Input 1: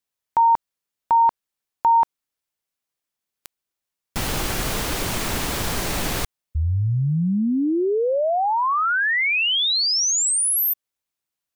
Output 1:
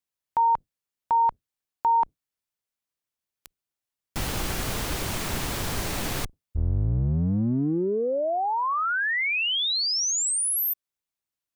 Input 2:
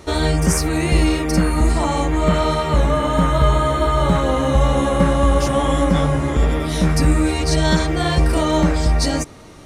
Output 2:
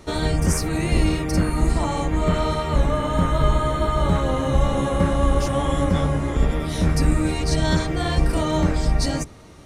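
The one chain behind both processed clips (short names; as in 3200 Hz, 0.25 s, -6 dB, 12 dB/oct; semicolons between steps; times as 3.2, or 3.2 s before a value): octaver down 1 oct, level -2 dB; gain -5 dB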